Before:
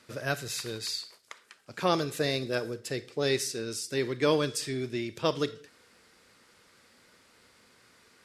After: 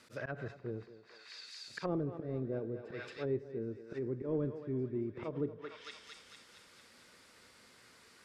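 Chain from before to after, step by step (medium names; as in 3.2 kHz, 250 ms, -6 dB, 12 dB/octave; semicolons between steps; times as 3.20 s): dynamic bell 1.9 kHz, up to +5 dB, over -47 dBFS, Q 1; slow attack 140 ms; in parallel at -10 dB: wavefolder -27 dBFS; on the sum: thinning echo 225 ms, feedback 64%, high-pass 910 Hz, level -5 dB; low-pass that closes with the level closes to 410 Hz, closed at -28 dBFS; trim -4 dB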